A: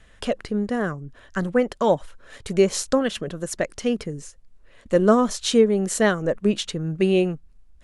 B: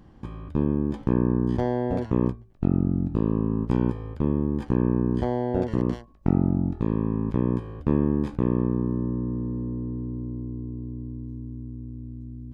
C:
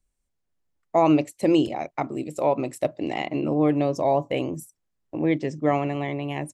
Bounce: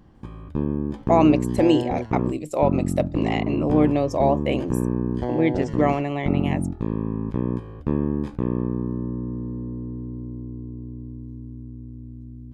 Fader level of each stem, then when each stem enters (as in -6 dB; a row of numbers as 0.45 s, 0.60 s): mute, -1.0 dB, +1.5 dB; mute, 0.00 s, 0.15 s